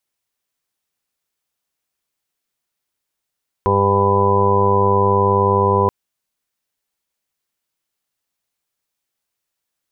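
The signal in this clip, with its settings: steady additive tone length 2.23 s, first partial 99.5 Hz, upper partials -4.5/-18/1.5/-0.5/-10/-13/-7.5/-8/3.5 dB, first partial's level -19.5 dB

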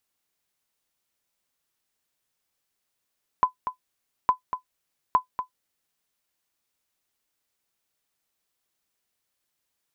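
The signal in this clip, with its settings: sonar ping 1.01 kHz, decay 0.11 s, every 0.86 s, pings 3, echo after 0.24 s, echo -9.5 dB -9.5 dBFS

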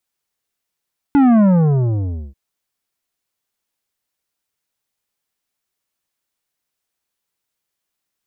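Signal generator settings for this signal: sub drop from 290 Hz, over 1.19 s, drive 10.5 dB, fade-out 0.94 s, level -9.5 dB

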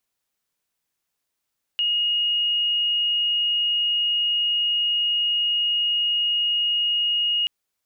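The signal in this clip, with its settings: tone sine 2.87 kHz -19 dBFS 5.68 s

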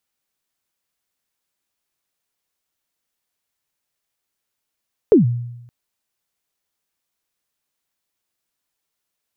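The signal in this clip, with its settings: kick drum length 0.57 s, from 480 Hz, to 120 Hz, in 132 ms, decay 0.91 s, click off, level -5 dB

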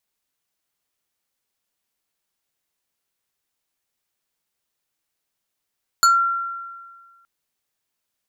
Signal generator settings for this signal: FM tone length 1.22 s, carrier 1.37 kHz, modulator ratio 4.19, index 1.2, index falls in 0.20 s exponential, decay 1.64 s, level -9.5 dB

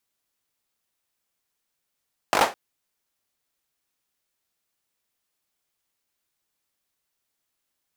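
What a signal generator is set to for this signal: hand clap length 0.21 s, bursts 5, apart 20 ms, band 740 Hz, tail 0.25 s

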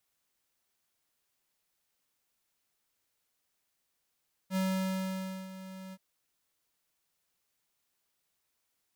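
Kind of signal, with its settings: ADSR square 189 Hz, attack 63 ms, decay 919 ms, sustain -15.5 dB, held 1.43 s, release 46 ms -29.5 dBFS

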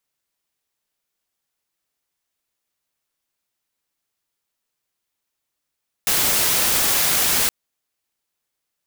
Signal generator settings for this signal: noise white, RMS -18.5 dBFS 1.42 s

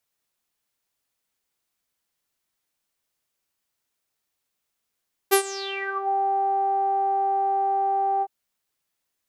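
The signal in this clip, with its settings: synth note saw G4 12 dB/octave, low-pass 810 Hz, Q 11, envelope 4 oct, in 0.76 s, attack 22 ms, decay 0.09 s, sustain -19 dB, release 0.05 s, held 2.91 s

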